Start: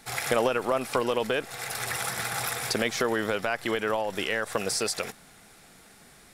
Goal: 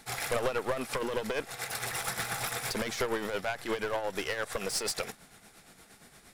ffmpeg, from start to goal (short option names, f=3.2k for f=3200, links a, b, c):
-af "aeval=exprs='clip(val(0),-1,0.0335)':c=same,tremolo=f=8.6:d=0.55"